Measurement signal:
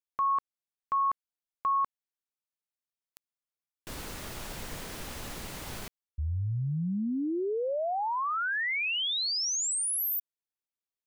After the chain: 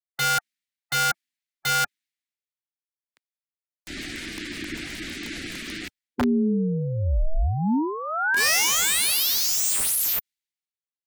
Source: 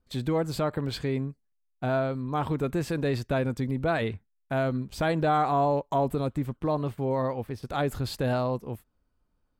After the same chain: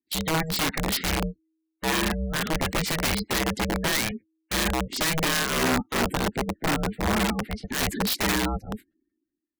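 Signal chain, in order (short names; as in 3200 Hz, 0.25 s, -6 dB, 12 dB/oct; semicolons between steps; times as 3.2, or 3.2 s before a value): ring modulator 320 Hz; graphic EQ 125/250/500/1000/2000/4000/8000 Hz -4/+6/-9/-10/+11/+6/+3 dB; in parallel at -2 dB: limiter -23 dBFS; on the sum: spectral gate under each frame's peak -20 dB strong; compressor 8:1, threshold -25 dBFS; wrapped overs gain 23.5 dB; three-band expander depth 70%; gain +5.5 dB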